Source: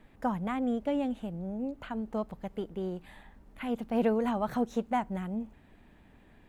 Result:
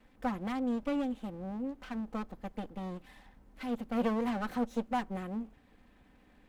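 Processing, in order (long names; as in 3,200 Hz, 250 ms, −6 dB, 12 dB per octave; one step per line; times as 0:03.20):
lower of the sound and its delayed copy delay 3.9 ms
level −2.5 dB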